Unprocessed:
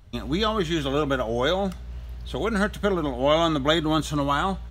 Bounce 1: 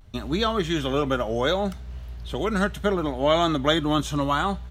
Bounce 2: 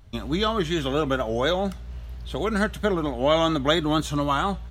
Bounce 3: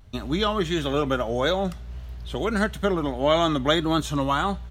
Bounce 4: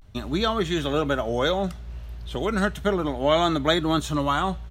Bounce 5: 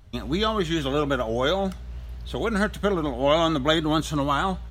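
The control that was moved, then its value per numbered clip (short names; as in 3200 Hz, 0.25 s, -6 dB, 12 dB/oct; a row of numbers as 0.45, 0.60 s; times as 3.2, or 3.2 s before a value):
vibrato, rate: 0.7, 4.3, 1.6, 0.35, 6.6 Hz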